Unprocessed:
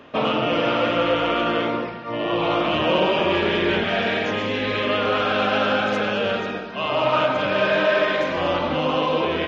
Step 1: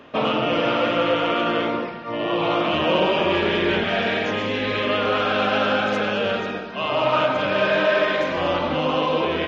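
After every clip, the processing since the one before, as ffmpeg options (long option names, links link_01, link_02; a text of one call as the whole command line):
ffmpeg -i in.wav -af "bandreject=frequency=60:width_type=h:width=6,bandreject=frequency=120:width_type=h:width=6" out.wav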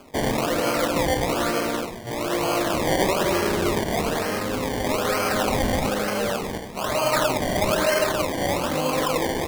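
ffmpeg -i in.wav -af "acrusher=samples=23:mix=1:aa=0.000001:lfo=1:lforange=23:lforate=1.1,volume=-2dB" out.wav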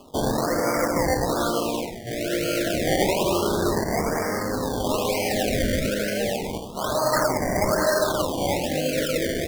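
ffmpeg -i in.wav -af "afftfilt=real='re*(1-between(b*sr/1024,940*pow(3300/940,0.5+0.5*sin(2*PI*0.3*pts/sr))/1.41,940*pow(3300/940,0.5+0.5*sin(2*PI*0.3*pts/sr))*1.41))':imag='im*(1-between(b*sr/1024,940*pow(3300/940,0.5+0.5*sin(2*PI*0.3*pts/sr))/1.41,940*pow(3300/940,0.5+0.5*sin(2*PI*0.3*pts/sr))*1.41))':win_size=1024:overlap=0.75" out.wav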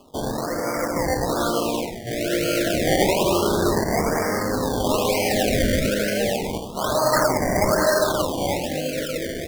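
ffmpeg -i in.wav -af "dynaudnorm=framelen=280:gausssize=9:maxgain=6.5dB,volume=-3dB" out.wav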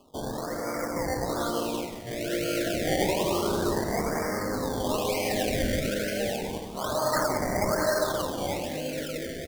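ffmpeg -i in.wav -af "aecho=1:1:180|360|540|720:0.251|0.111|0.0486|0.0214,volume=-7dB" out.wav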